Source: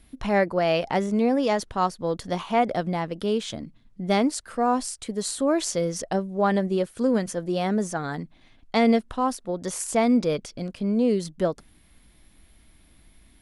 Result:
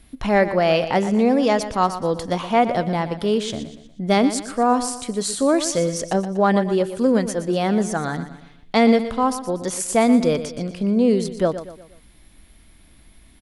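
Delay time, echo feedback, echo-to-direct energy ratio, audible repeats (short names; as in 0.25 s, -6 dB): 0.12 s, 43%, -11.0 dB, 4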